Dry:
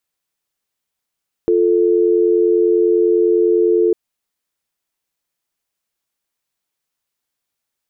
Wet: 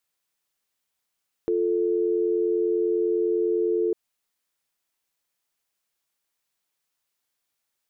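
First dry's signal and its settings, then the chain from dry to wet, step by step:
call progress tone dial tone, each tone -13.5 dBFS 2.45 s
low shelf 450 Hz -4.5 dB; limiter -17.5 dBFS

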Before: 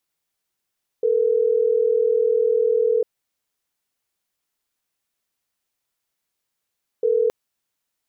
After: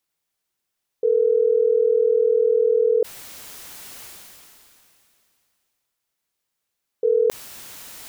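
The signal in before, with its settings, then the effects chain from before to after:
call progress tone ringback tone, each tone -18.5 dBFS 6.27 s
sustainer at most 21 dB/s

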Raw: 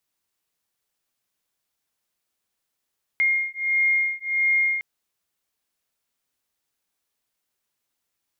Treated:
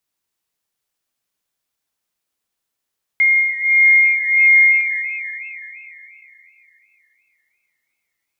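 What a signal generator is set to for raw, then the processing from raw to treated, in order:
beating tones 2130 Hz, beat 1.5 Hz, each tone -22.5 dBFS 1.61 s
dynamic EQ 2100 Hz, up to +7 dB, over -34 dBFS, Q 0.91; Schroeder reverb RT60 3.1 s, combs from 28 ms, DRR 8.5 dB; warbling echo 0.294 s, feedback 57%, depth 190 cents, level -20.5 dB

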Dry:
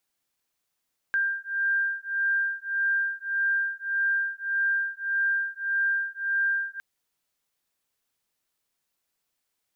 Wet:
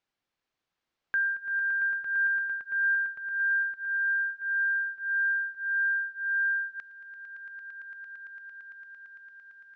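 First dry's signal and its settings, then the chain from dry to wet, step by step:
beating tones 1590 Hz, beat 1.7 Hz, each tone -27 dBFS 5.66 s
air absorption 170 m; swelling echo 0.113 s, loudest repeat 8, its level -10.5 dB

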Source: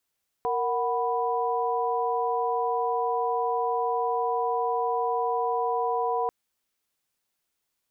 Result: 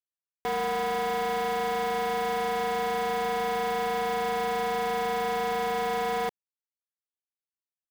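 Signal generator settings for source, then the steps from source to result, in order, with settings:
chord A#4/F#5/B5 sine, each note -28 dBFS 5.84 s
band shelf 560 Hz +10 dB; requantised 6-bit, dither none; soft clip -27 dBFS

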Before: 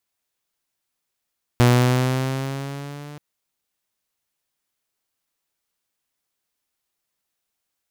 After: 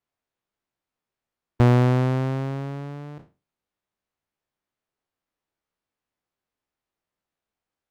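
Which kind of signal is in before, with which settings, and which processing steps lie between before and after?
gliding synth tone saw, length 1.58 s, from 121 Hz, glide +3.5 st, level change -25 dB, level -8.5 dB
spectral trails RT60 0.31 s; LPF 1100 Hz 6 dB/oct

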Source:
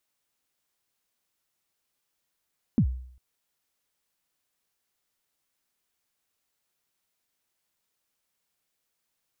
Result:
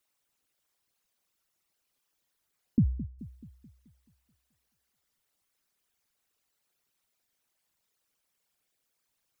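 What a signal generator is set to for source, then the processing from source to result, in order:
kick drum length 0.40 s, from 270 Hz, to 63 Hz, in 79 ms, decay 0.61 s, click off, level -15 dB
formant sharpening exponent 2; analogue delay 0.215 s, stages 1024, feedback 50%, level -14 dB

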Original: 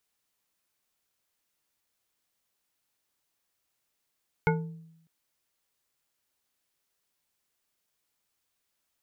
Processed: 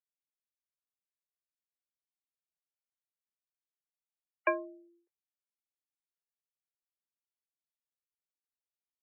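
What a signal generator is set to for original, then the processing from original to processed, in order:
glass hit bar, length 0.60 s, lowest mode 163 Hz, modes 5, decay 0.85 s, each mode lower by 1 dB, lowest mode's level -22 dB
expander -57 dBFS; spectral gate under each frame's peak -30 dB strong; mistuned SSB +180 Hz 210–2600 Hz

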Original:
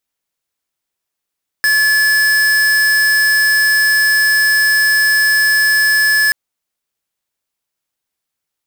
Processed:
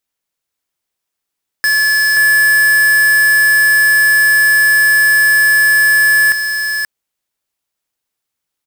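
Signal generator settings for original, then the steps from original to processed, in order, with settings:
tone square 1720 Hz -12 dBFS 4.68 s
echo 0.529 s -5.5 dB

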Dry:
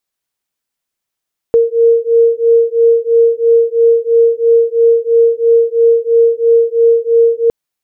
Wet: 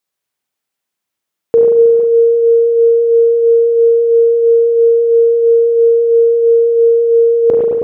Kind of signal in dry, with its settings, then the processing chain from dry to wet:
beating tones 461 Hz, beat 3 Hz, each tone -10 dBFS 5.96 s
HPF 87 Hz; spring tank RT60 1.7 s, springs 35/45 ms, chirp 35 ms, DRR 1 dB; sustainer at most 22 dB/s

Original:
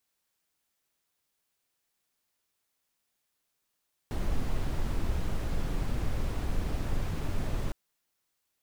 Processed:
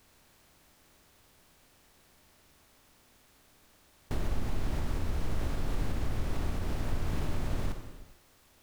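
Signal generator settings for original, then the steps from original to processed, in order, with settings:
noise brown, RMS -28.5 dBFS 3.61 s
per-bin compression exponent 0.6; compressor, threshold -27 dBFS; non-linear reverb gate 0.48 s falling, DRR 5 dB

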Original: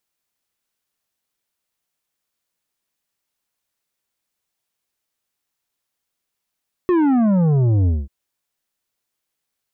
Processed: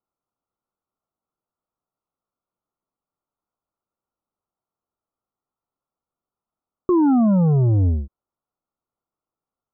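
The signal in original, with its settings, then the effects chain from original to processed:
sub drop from 370 Hz, over 1.19 s, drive 9 dB, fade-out 0.21 s, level -14 dB
Chebyshev low-pass 1400 Hz, order 8

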